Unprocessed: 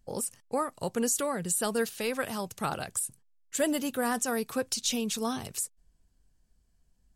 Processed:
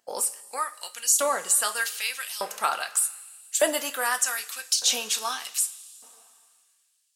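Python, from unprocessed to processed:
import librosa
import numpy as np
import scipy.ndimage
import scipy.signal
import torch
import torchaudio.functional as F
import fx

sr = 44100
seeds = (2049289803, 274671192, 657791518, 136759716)

y = fx.rev_double_slope(x, sr, seeds[0], early_s=0.24, late_s=2.6, knee_db=-18, drr_db=6.5)
y = fx.filter_lfo_highpass(y, sr, shape='saw_up', hz=0.83, low_hz=600.0, high_hz=3900.0, q=0.97)
y = F.gain(torch.from_numpy(y), 7.0).numpy()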